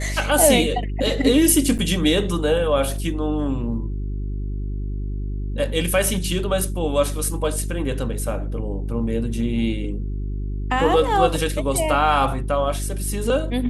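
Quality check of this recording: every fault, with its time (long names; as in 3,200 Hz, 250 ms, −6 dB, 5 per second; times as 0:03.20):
mains hum 50 Hz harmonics 8 −26 dBFS
0:01.78–0:01.79: drop-out 8.2 ms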